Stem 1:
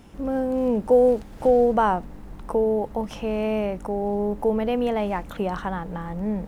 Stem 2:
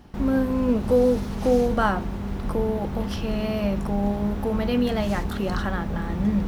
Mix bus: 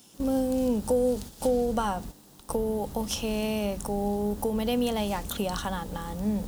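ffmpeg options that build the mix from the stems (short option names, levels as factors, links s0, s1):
-filter_complex "[0:a]highpass=140,acompressor=threshold=0.0891:ratio=6,aexciter=amount=7:drive=4.9:freq=3100,volume=0.668,asplit=2[s0][s1];[1:a]lowshelf=f=330:g=6,volume=-1,volume=0.168[s2];[s1]apad=whole_len=285429[s3];[s2][s3]sidechaingate=range=0.0224:threshold=0.00708:ratio=16:detection=peak[s4];[s0][s4]amix=inputs=2:normalize=0,agate=range=0.501:threshold=0.0126:ratio=16:detection=peak"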